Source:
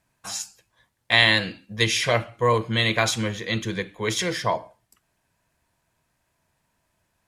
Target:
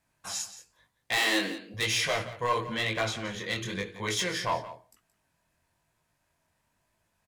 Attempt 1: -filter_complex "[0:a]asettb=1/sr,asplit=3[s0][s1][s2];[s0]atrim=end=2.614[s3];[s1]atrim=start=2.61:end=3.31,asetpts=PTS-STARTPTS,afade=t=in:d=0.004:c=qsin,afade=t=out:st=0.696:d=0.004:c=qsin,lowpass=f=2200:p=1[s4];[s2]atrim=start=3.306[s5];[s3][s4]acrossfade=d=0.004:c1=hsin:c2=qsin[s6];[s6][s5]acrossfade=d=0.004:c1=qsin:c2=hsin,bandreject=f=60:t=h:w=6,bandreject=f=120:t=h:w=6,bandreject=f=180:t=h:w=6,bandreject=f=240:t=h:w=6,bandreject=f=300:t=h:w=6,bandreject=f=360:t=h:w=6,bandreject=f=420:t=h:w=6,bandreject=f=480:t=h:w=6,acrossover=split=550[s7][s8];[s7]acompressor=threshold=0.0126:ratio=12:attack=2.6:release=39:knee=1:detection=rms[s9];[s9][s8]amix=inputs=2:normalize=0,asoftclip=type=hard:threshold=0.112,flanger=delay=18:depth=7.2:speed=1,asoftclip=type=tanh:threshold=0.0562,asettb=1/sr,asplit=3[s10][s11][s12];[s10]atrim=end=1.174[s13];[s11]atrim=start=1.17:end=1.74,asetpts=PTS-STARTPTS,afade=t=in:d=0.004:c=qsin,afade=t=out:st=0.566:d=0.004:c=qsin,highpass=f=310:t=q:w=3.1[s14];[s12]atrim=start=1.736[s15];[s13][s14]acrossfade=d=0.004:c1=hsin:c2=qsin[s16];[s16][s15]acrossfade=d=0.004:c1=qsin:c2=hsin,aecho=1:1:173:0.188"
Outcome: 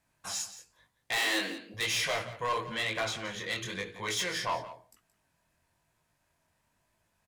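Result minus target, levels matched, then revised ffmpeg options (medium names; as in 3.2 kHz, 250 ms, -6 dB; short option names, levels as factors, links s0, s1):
saturation: distortion +19 dB; compression: peak gain reduction +7 dB
-filter_complex "[0:a]asettb=1/sr,asplit=3[s0][s1][s2];[s0]atrim=end=2.614[s3];[s1]atrim=start=2.61:end=3.31,asetpts=PTS-STARTPTS,afade=t=in:d=0.004:c=qsin,afade=t=out:st=0.696:d=0.004:c=qsin,lowpass=f=2200:p=1[s4];[s2]atrim=start=3.306[s5];[s3][s4]acrossfade=d=0.004:c1=hsin:c2=qsin[s6];[s6][s5]acrossfade=d=0.004:c1=qsin:c2=hsin,bandreject=f=60:t=h:w=6,bandreject=f=120:t=h:w=6,bandreject=f=180:t=h:w=6,bandreject=f=240:t=h:w=6,bandreject=f=300:t=h:w=6,bandreject=f=360:t=h:w=6,bandreject=f=420:t=h:w=6,bandreject=f=480:t=h:w=6,acrossover=split=550[s7][s8];[s7]acompressor=threshold=0.0299:ratio=12:attack=2.6:release=39:knee=1:detection=rms[s9];[s9][s8]amix=inputs=2:normalize=0,asoftclip=type=hard:threshold=0.112,flanger=delay=18:depth=7.2:speed=1,asoftclip=type=tanh:threshold=0.224,asettb=1/sr,asplit=3[s10][s11][s12];[s10]atrim=end=1.174[s13];[s11]atrim=start=1.17:end=1.74,asetpts=PTS-STARTPTS,afade=t=in:d=0.004:c=qsin,afade=t=out:st=0.566:d=0.004:c=qsin,highpass=f=310:t=q:w=3.1[s14];[s12]atrim=start=1.736[s15];[s13][s14]acrossfade=d=0.004:c1=hsin:c2=qsin[s16];[s16][s15]acrossfade=d=0.004:c1=qsin:c2=hsin,aecho=1:1:173:0.188"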